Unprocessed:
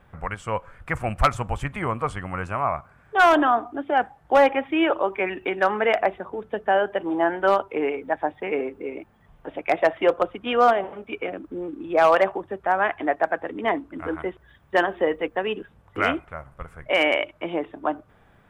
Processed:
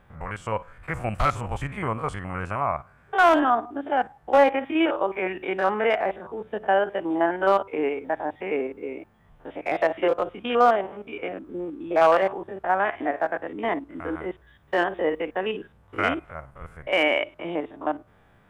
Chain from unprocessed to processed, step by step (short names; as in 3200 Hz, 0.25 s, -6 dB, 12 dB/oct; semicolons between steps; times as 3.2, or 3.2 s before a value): stepped spectrum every 50 ms